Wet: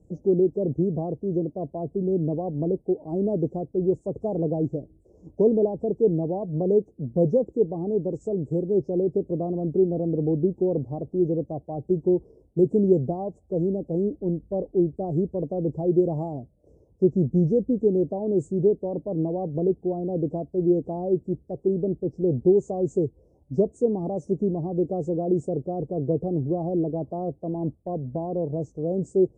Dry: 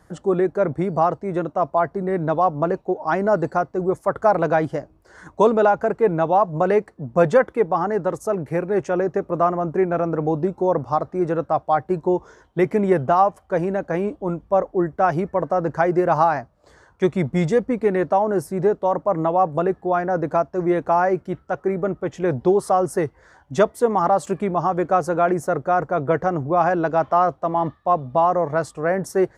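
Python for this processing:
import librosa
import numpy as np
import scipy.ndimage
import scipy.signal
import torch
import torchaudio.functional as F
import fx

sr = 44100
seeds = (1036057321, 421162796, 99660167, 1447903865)

y = fx.freq_compress(x, sr, knee_hz=3500.0, ratio=1.5)
y = scipy.signal.sosfilt(scipy.signal.cheby2(4, 80, [1600.0, 3200.0], 'bandstop', fs=sr, output='sos'), y)
y = fx.dynamic_eq(y, sr, hz=570.0, q=2.9, threshold_db=-39.0, ratio=4.0, max_db=-4)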